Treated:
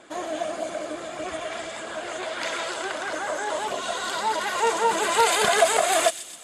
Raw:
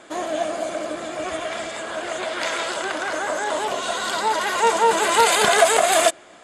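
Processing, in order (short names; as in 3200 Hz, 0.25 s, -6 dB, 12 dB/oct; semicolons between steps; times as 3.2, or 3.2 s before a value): flange 1.6 Hz, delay 0.2 ms, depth 2.7 ms, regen -56%; on a send: thin delay 0.127 s, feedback 61%, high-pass 3600 Hz, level -10 dB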